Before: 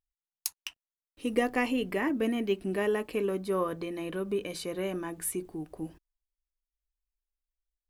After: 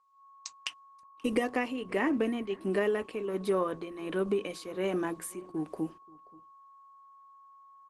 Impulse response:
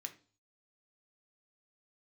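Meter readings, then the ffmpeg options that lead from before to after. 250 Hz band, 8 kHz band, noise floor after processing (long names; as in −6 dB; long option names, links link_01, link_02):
−0.5 dB, −6.5 dB, −57 dBFS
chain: -filter_complex "[0:a]tremolo=f=1.4:d=0.77,agate=range=-19dB:threshold=-54dB:ratio=16:detection=peak,aresample=22050,aresample=44100,acompressor=threshold=-31dB:ratio=10,aeval=exprs='val(0)+0.001*sin(2*PI*1100*n/s)':channel_layout=same,highpass=180,asplit=2[link_01][link_02];[link_02]adelay=530.6,volume=-24dB,highshelf=frequency=4000:gain=-11.9[link_03];[link_01][link_03]amix=inputs=2:normalize=0,dynaudnorm=framelen=120:gausssize=3:maxgain=14dB,volume=-7dB" -ar 48000 -c:a libopus -b:a 16k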